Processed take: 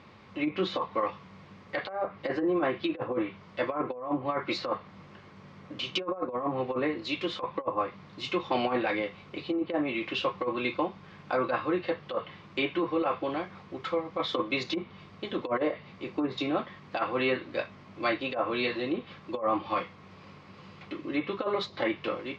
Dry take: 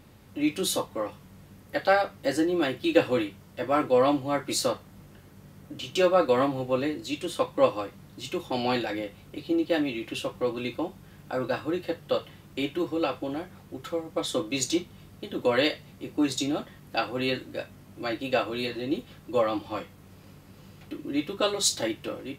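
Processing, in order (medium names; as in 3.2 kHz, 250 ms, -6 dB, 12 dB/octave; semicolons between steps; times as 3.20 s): low-pass that closes with the level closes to 880 Hz, closed at -20 dBFS; cabinet simulation 120–5000 Hz, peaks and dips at 130 Hz -5 dB, 280 Hz -6 dB, 1.1 kHz +9 dB, 2.2 kHz +6 dB; compressor with a negative ratio -27 dBFS, ratio -0.5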